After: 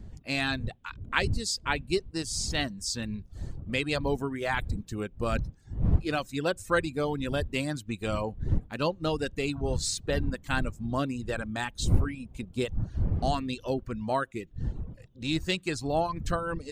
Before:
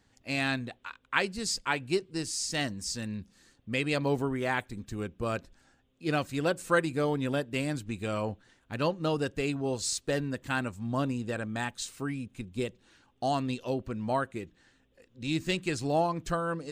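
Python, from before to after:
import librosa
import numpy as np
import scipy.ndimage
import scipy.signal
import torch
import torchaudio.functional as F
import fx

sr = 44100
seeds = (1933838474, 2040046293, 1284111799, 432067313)

p1 = fx.dmg_wind(x, sr, seeds[0], corner_hz=100.0, level_db=-33.0)
p2 = fx.dereverb_blind(p1, sr, rt60_s=0.7)
p3 = fx.rider(p2, sr, range_db=4, speed_s=0.5)
p4 = p2 + (p3 * 10.0 ** (-2.5 / 20.0))
p5 = fx.dynamic_eq(p4, sr, hz=3800.0, q=2.6, threshold_db=-45.0, ratio=4.0, max_db=4)
y = p5 * 10.0 ** (-4.0 / 20.0)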